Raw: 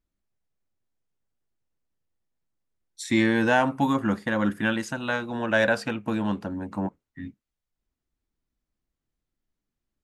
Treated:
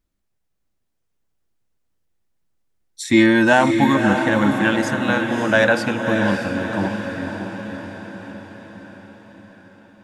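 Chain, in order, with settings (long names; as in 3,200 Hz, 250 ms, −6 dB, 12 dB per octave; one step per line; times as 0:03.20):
0:03.13–0:03.53: comb filter 3.2 ms, depth 61%
feedback delay with all-pass diffusion 599 ms, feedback 56%, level −6 dB
level +6 dB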